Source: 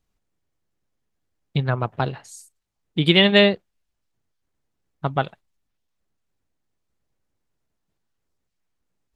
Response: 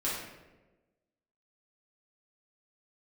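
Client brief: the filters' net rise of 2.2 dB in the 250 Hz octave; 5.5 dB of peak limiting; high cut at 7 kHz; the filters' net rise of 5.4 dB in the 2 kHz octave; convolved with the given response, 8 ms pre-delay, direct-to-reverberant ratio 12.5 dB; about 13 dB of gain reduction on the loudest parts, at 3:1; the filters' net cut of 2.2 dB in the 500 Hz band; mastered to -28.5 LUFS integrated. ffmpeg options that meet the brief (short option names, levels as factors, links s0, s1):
-filter_complex "[0:a]lowpass=7000,equalizer=f=250:t=o:g=4.5,equalizer=f=500:t=o:g=-5,equalizer=f=2000:t=o:g=6.5,acompressor=threshold=0.0501:ratio=3,alimiter=limit=0.15:level=0:latency=1,asplit=2[s0][s1];[1:a]atrim=start_sample=2205,adelay=8[s2];[s1][s2]afir=irnorm=-1:irlink=0,volume=0.112[s3];[s0][s3]amix=inputs=2:normalize=0,volume=1.26"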